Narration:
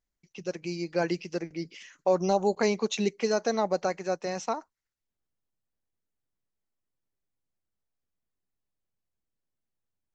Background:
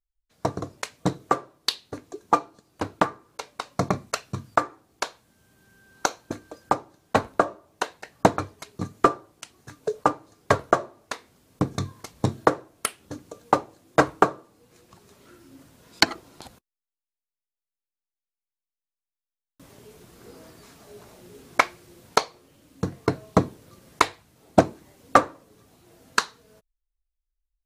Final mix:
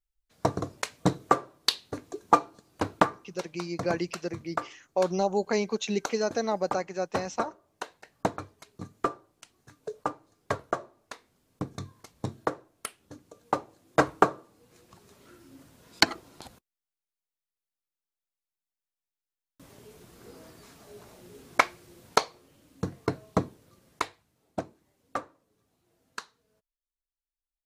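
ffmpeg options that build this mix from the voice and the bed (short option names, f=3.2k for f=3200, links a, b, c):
-filter_complex "[0:a]adelay=2900,volume=-1.5dB[a];[1:a]volume=7.5dB,afade=t=out:st=2.97:d=0.71:silence=0.316228,afade=t=in:st=13.31:d=0.92:silence=0.421697,afade=t=out:st=22.26:d=2.31:silence=0.188365[b];[a][b]amix=inputs=2:normalize=0"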